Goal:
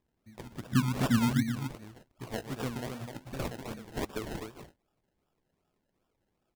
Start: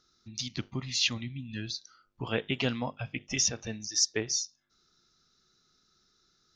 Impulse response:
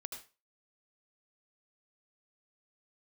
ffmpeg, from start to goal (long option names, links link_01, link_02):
-filter_complex "[0:a]asplit=3[link_01][link_02][link_03];[link_01]afade=type=out:start_time=0.7:duration=0.02[link_04];[link_02]lowshelf=frequency=340:width_type=q:width=3:gain=12,afade=type=in:start_time=0.7:duration=0.02,afade=type=out:start_time=1.41:duration=0.02[link_05];[link_03]afade=type=in:start_time=1.41:duration=0.02[link_06];[link_04][link_05][link_06]amix=inputs=3:normalize=0,asplit=2[link_07][link_08];[link_08]aecho=0:1:125.4|256.6:0.251|0.501[link_09];[link_07][link_09]amix=inputs=2:normalize=0,adynamicsmooth=sensitivity=3:basefreq=4000,flanger=delay=2.8:depth=7.3:regen=-80:speed=0.49:shape=sinusoidal,acrusher=samples=30:mix=1:aa=0.000001:lfo=1:lforange=18:lforate=2.6,volume=-1.5dB"